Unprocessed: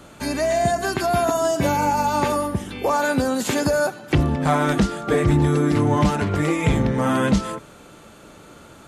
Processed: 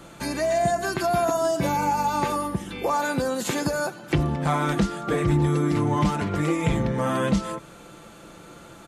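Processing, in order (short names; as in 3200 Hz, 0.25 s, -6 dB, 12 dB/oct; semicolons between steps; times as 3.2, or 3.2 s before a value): comb 5.9 ms, depth 37%; in parallel at -2 dB: compressor, threshold -29 dBFS, peak gain reduction 16 dB; on the sum: gain -6 dB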